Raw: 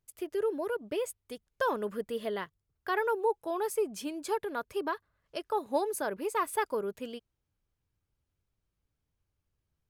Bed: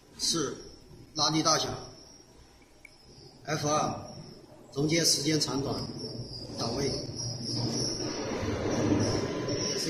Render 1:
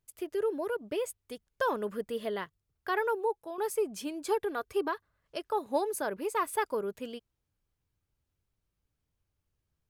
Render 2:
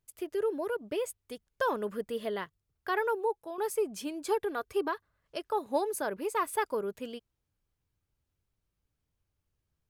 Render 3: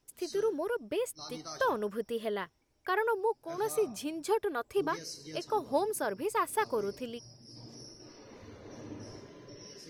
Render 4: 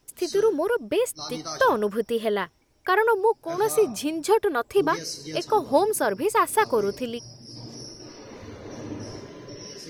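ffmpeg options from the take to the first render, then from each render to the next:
ffmpeg -i in.wav -filter_complex "[0:a]asettb=1/sr,asplit=3[link_01][link_02][link_03];[link_01]atrim=end=4.274[link_04];[link_02]atrim=start=4.27:end=4.88,asetpts=PTS-STARTPTS,afade=type=in:duration=0.004:curve=qsin,afade=type=out:start_time=0.606:duration=0.004:curve=qsin,aecho=1:1:2.6:0.55,atrim=end_sample=26901[link_05];[link_03]atrim=start=4.876[link_06];[link_04][link_05]acrossfade=duration=0.004:curve1=hsin:curve2=qsin[link_07];[link_07][link_06]acrossfade=duration=0.004:curve1=qsin:curve2=hsin,asplit=2[link_08][link_09];[link_08]atrim=end=3.58,asetpts=PTS-STARTPTS,afade=type=out:start_time=2.93:duration=0.65:curve=qsin:silence=0.354813[link_10];[link_09]atrim=start=3.58,asetpts=PTS-STARTPTS,afade=type=in:duration=0.004:curve=hsin:silence=0.354813[link_11];[link_10][link_11]concat=n=2:v=0:a=1" out.wav
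ffmpeg -i in.wav -af anull out.wav
ffmpeg -i in.wav -i bed.wav -filter_complex "[1:a]volume=-18.5dB[link_01];[0:a][link_01]amix=inputs=2:normalize=0" out.wav
ffmpeg -i in.wav -af "volume=9.5dB" out.wav

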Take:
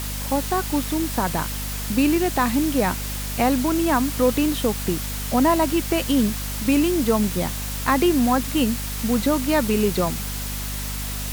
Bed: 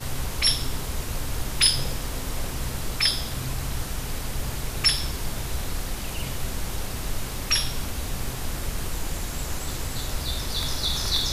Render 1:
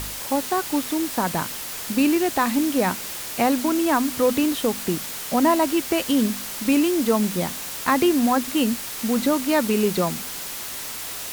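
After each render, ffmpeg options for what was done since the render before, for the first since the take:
ffmpeg -i in.wav -af "bandreject=frequency=50:width_type=h:width=4,bandreject=frequency=100:width_type=h:width=4,bandreject=frequency=150:width_type=h:width=4,bandreject=frequency=200:width_type=h:width=4,bandreject=frequency=250:width_type=h:width=4" out.wav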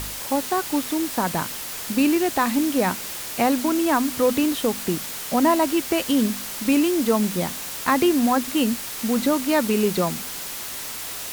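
ffmpeg -i in.wav -af anull out.wav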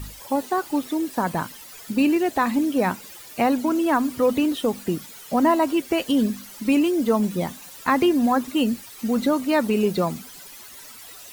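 ffmpeg -i in.wav -af "afftdn=noise_reduction=14:noise_floor=-33" out.wav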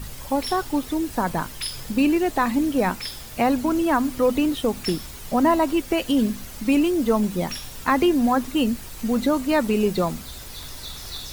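ffmpeg -i in.wav -i bed.wav -filter_complex "[1:a]volume=-11dB[link_01];[0:a][link_01]amix=inputs=2:normalize=0" out.wav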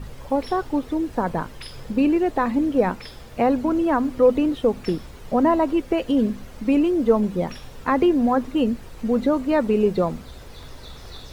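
ffmpeg -i in.wav -af "lowpass=frequency=1600:poles=1,equalizer=frequency=480:width=2.8:gain=5.5" out.wav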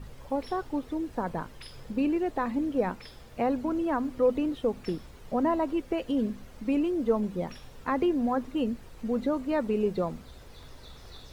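ffmpeg -i in.wav -af "volume=-8dB" out.wav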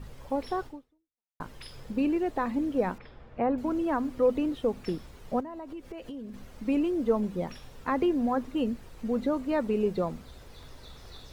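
ffmpeg -i in.wav -filter_complex "[0:a]asettb=1/sr,asplit=3[link_01][link_02][link_03];[link_01]atrim=end=2.984[link_04];[link_02]atrim=start=2.98:end=3.58,asetpts=PTS-STARTPTS,afade=type=in:duration=0.004:curve=qsin,afade=type=out:start_time=0.596:duration=0.004:curve=qsin,lowpass=2000[link_05];[link_03]atrim=start=3.576[link_06];[link_04][link_05]acrossfade=duration=0.004:curve1=hsin:curve2=qsin[link_07];[link_07][link_06]acrossfade=duration=0.004:curve1=qsin:curve2=hsin,asettb=1/sr,asplit=3[link_08][link_09][link_10];[link_08]atrim=end=5.404[link_11];[link_09]atrim=start=5.4:end=6.34,asetpts=PTS-STARTPTS,afade=type=in:duration=0.004:curve=qsin,afade=type=out:start_time=0.936:duration=0.004:curve=qsin,acompressor=threshold=-37dB:ratio=8:attack=3.2:release=140:knee=1:detection=peak[link_12];[link_10]atrim=start=6.336[link_13];[link_11][link_12]acrossfade=duration=0.004:curve1=hsin:curve2=qsin[link_14];[link_14][link_13]acrossfade=duration=0.004:curve1=qsin:curve2=hsin,asplit=2[link_15][link_16];[link_15]atrim=end=1.4,asetpts=PTS-STARTPTS,afade=type=out:start_time=0.66:duration=0.74:curve=exp[link_17];[link_16]atrim=start=1.4,asetpts=PTS-STARTPTS,afade=type=in:duration=0.004:curve=hsin[link_18];[link_17][link_18]concat=n=2:v=0:a=1" out.wav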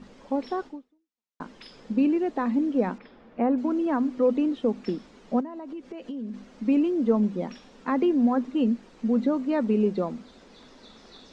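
ffmpeg -i in.wav -af "lowpass=frequency=7200:width=0.5412,lowpass=frequency=7200:width=1.3066,lowshelf=frequency=150:width_type=q:width=3:gain=-12.5" out.wav

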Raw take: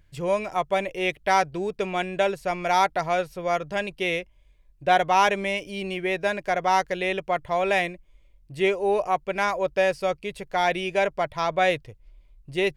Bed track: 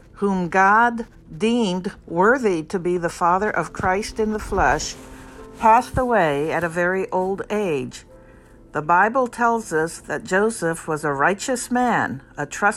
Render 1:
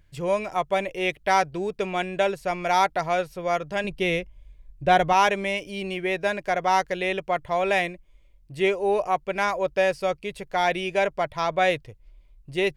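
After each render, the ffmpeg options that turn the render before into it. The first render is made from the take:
ffmpeg -i in.wav -filter_complex "[0:a]asettb=1/sr,asplit=3[link_01][link_02][link_03];[link_01]atrim=end=3.844[link_04];[link_02]atrim=start=3.84:end=5.13,asetpts=PTS-STARTPTS,afade=type=in:duration=0.004:curve=qsin,afade=type=out:start_time=1.286:duration=0.004:curve=qsin,lowshelf=frequency=220:gain=11[link_05];[link_03]atrim=start=5.126[link_06];[link_04][link_05]acrossfade=duration=0.004:curve1=hsin:curve2=qsin[link_07];[link_07][link_06]acrossfade=duration=0.004:curve1=qsin:curve2=hsin" out.wav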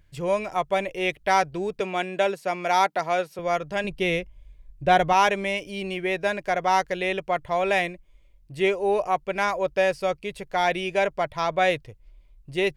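ffmpeg -i in.wav -filter_complex "[0:a]asettb=1/sr,asplit=3[link_01][link_02][link_03];[link_01]atrim=end=1.804[link_04];[link_02]atrim=start=1.8:end=3.39,asetpts=PTS-STARTPTS,afade=type=in:duration=0.004:curve=qsin,afade=type=out:start_time=1.586:duration=0.004:curve=qsin,highpass=frequency=180:width=0.5412,highpass=frequency=180:width=1.3066[link_05];[link_03]atrim=start=3.386[link_06];[link_04][link_05]acrossfade=duration=0.004:curve1=hsin:curve2=qsin[link_07];[link_07][link_06]acrossfade=duration=0.004:curve1=qsin:curve2=hsin" out.wav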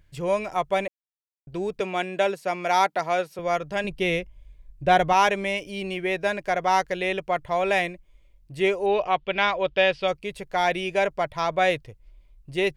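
ffmpeg -i in.wav -filter_complex "[0:a]asettb=1/sr,asplit=3[link_01][link_02][link_03];[link_01]atrim=end=8.864[link_04];[link_02]atrim=start=8.86:end=10.08,asetpts=PTS-STARTPTS,afade=type=in:duration=0.004:curve=qsin,afade=type=out:start_time=1.216:duration=0.004:curve=qsin,lowpass=frequency=3300:width_type=q:width=3.9[link_05];[link_03]atrim=start=10.076[link_06];[link_04][link_05]acrossfade=duration=0.004:curve1=hsin:curve2=qsin[link_07];[link_07][link_06]acrossfade=duration=0.004:curve1=qsin:curve2=hsin,asplit=3[link_08][link_09][link_10];[link_08]atrim=end=0.88,asetpts=PTS-STARTPTS,afade=type=out:start_time=0.876:duration=0.004:curve=hsin[link_11];[link_09]atrim=start=0.88:end=1.47,asetpts=PTS-STARTPTS,volume=0[link_12];[link_10]atrim=start=1.47,asetpts=PTS-STARTPTS,afade=type=in:duration=0.004:curve=hsin[link_13];[link_11][link_12][link_13]concat=n=3:v=0:a=1" out.wav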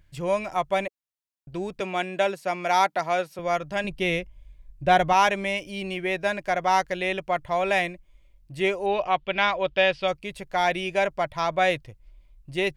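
ffmpeg -i in.wav -af "equalizer=frequency=440:width_type=o:width=0.22:gain=-9" out.wav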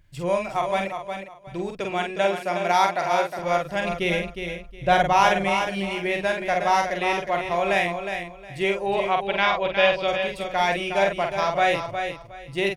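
ffmpeg -i in.wav -filter_complex "[0:a]asplit=2[link_01][link_02];[link_02]adelay=46,volume=-4.5dB[link_03];[link_01][link_03]amix=inputs=2:normalize=0,asplit=2[link_04][link_05];[link_05]aecho=0:1:362|724|1086:0.422|0.0928|0.0204[link_06];[link_04][link_06]amix=inputs=2:normalize=0" out.wav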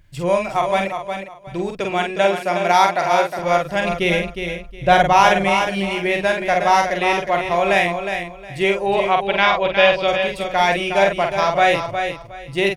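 ffmpeg -i in.wav -af "volume=5.5dB,alimiter=limit=-1dB:level=0:latency=1" out.wav

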